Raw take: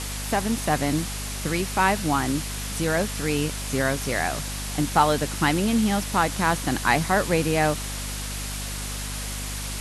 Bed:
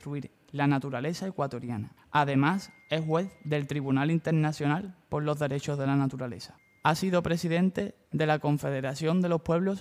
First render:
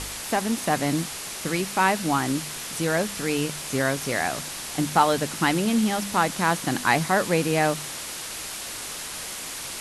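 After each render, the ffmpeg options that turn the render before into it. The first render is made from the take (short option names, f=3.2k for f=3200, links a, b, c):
-af "bandreject=f=50:t=h:w=4,bandreject=f=100:t=h:w=4,bandreject=f=150:t=h:w=4,bandreject=f=200:t=h:w=4,bandreject=f=250:t=h:w=4"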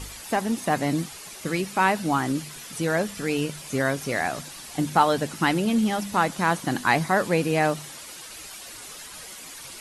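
-af "afftdn=nr=10:nf=-35"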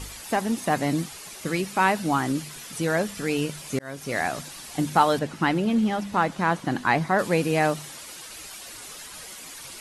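-filter_complex "[0:a]asettb=1/sr,asplit=3[a][b][c];[a]atrim=end=5.194[d];[b]atrim=start=5.19:end=7.19,asetpts=PTS-STARTPTS,afade=t=in:d=0.004:c=qsin,afade=t=out:st=1.996:d=0.004:c=qsin,lowpass=f=2.7k:p=1[e];[c]atrim=start=7.186[f];[d][e]acrossfade=d=0.004:c1=hsin:c2=qsin[g];[g][f]acrossfade=d=0.004:c1=qsin:c2=hsin,asplit=2[h][i];[h]atrim=end=3.79,asetpts=PTS-STARTPTS,afade=t=out:st=3.786:d=0.004:c=hsin[j];[i]atrim=start=3.79,asetpts=PTS-STARTPTS,afade=t=in:d=0.4[k];[j][k]concat=n=2:v=0:a=1"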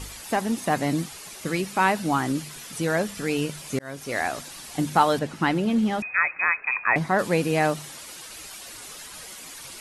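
-filter_complex "[0:a]asettb=1/sr,asplit=3[a][b][c];[a]atrim=end=4.034[d];[b]atrim=start=4.03:end=4.51,asetpts=PTS-STARTPTS,afade=t=in:d=0.004:c=qsin,afade=t=out:st=0.476:d=0.004:c=qsin,equalizer=f=160:t=o:w=0.77:g=-8[e];[c]atrim=start=4.506[f];[d][e]acrossfade=d=0.004:c1=hsin:c2=qsin[g];[g][f]acrossfade=d=0.004:c1=qsin:c2=hsin,asettb=1/sr,asplit=3[h][i][j];[h]atrim=end=6.024[k];[i]atrim=start=6.02:end=6.96,asetpts=PTS-STARTPTS,afade=t=in:d=0.004:c=qsin,afade=t=out:st=0.936:d=0.004:c=qsin,lowpass=f=2.3k:t=q:w=0.5098,lowpass=f=2.3k:t=q:w=0.6013,lowpass=f=2.3k:t=q:w=0.9,lowpass=f=2.3k:t=q:w=2.563,afreqshift=-2700[l];[j]atrim=start=6.956[m];[k][l]acrossfade=d=0.004:c1=hsin:c2=qsin[n];[n][m]acrossfade=d=0.004:c1=qsin:c2=hsin"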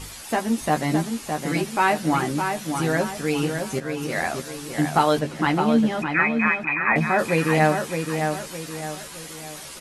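-filter_complex "[0:a]asplit=2[a][b];[b]adelay=13,volume=-5dB[c];[a][c]amix=inputs=2:normalize=0,asplit=2[d][e];[e]adelay=613,lowpass=f=2.9k:p=1,volume=-5.5dB,asplit=2[f][g];[g]adelay=613,lowpass=f=2.9k:p=1,volume=0.42,asplit=2[h][i];[i]adelay=613,lowpass=f=2.9k:p=1,volume=0.42,asplit=2[j][k];[k]adelay=613,lowpass=f=2.9k:p=1,volume=0.42,asplit=2[l][m];[m]adelay=613,lowpass=f=2.9k:p=1,volume=0.42[n];[f][h][j][l][n]amix=inputs=5:normalize=0[o];[d][o]amix=inputs=2:normalize=0"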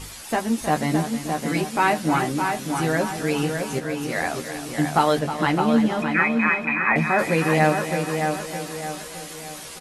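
-af "aecho=1:1:315|630|945|1260|1575|1890:0.282|0.147|0.0762|0.0396|0.0206|0.0107"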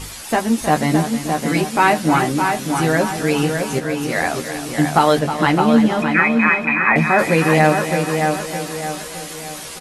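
-af "volume=5.5dB,alimiter=limit=-2dB:level=0:latency=1"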